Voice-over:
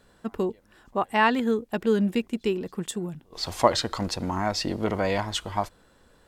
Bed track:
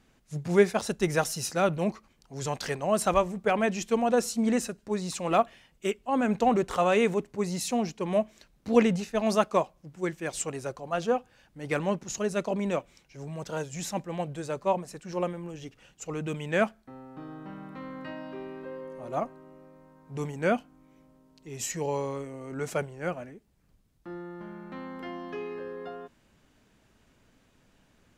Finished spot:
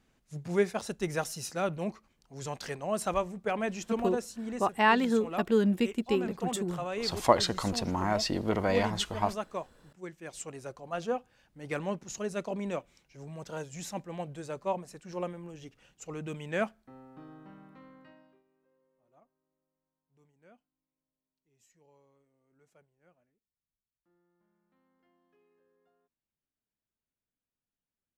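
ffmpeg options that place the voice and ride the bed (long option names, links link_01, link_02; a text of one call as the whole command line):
ffmpeg -i stem1.wav -i stem2.wav -filter_complex "[0:a]adelay=3650,volume=-2.5dB[link_01];[1:a]volume=0.5dB,afade=type=out:start_time=3.9:duration=0.42:silence=0.501187,afade=type=in:start_time=10.1:duration=0.84:silence=0.473151,afade=type=out:start_time=16.99:duration=1.44:silence=0.0375837[link_02];[link_01][link_02]amix=inputs=2:normalize=0" out.wav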